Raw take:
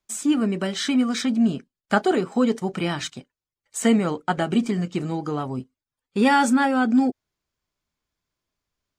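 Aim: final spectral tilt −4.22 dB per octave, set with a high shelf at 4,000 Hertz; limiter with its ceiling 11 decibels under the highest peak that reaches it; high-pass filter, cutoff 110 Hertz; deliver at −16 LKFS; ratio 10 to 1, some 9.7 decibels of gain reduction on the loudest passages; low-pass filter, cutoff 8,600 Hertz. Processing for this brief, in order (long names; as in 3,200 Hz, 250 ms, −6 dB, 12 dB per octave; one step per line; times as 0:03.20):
high-pass filter 110 Hz
low-pass filter 8,600 Hz
high-shelf EQ 4,000 Hz +4.5 dB
downward compressor 10 to 1, threshold −24 dBFS
level +14.5 dB
brickwall limiter −6.5 dBFS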